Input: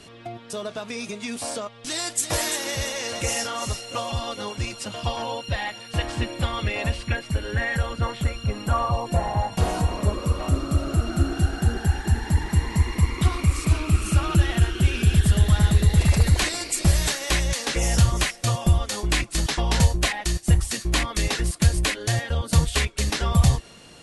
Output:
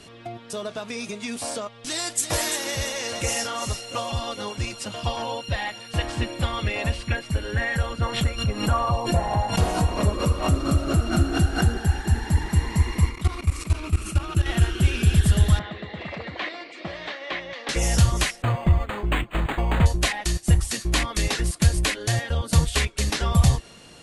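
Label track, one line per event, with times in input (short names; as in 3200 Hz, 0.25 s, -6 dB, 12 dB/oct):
8.030000	11.740000	backwards sustainer at most 97 dB/s
13.090000	14.460000	level quantiser steps of 16 dB
15.590000	17.690000	speaker cabinet 380–3000 Hz, peaks and dips at 410 Hz -6 dB, 880 Hz -5 dB, 1500 Hz -6 dB, 2600 Hz -6 dB
18.420000	19.860000	decimation joined by straight lines rate divided by 8×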